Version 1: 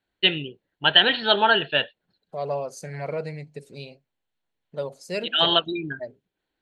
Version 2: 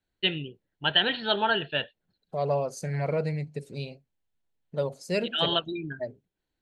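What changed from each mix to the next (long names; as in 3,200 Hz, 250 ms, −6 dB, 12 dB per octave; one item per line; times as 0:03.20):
first voice −7.0 dB
master: add low-shelf EQ 200 Hz +9 dB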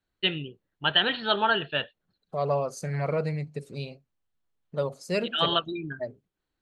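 master: add parametric band 1,200 Hz +9.5 dB 0.29 octaves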